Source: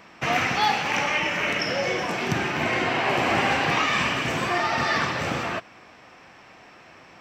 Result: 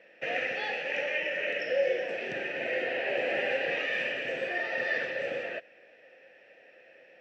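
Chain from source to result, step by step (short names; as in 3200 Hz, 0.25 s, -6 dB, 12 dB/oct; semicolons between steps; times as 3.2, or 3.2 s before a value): vowel filter e; gain +4 dB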